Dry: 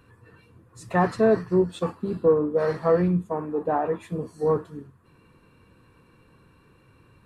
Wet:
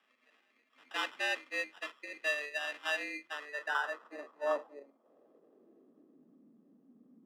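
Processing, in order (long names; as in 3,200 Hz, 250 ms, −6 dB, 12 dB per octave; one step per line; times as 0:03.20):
decimation without filtering 21×
frequency shifter +140 Hz
band-pass filter sweep 2,300 Hz → 230 Hz, 0:03.21–0:06.43
level −2.5 dB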